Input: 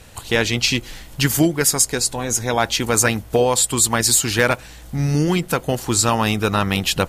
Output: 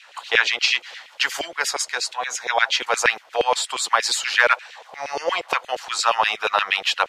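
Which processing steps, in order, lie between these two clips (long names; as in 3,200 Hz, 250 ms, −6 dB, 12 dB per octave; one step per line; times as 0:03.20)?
gain on a spectral selection 0:04.76–0:05.58, 440–1,200 Hz +10 dB
three-way crossover with the lows and the highs turned down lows −14 dB, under 600 Hz, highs −22 dB, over 5,700 Hz
auto-filter high-pass saw down 8.5 Hz 430–2,900 Hz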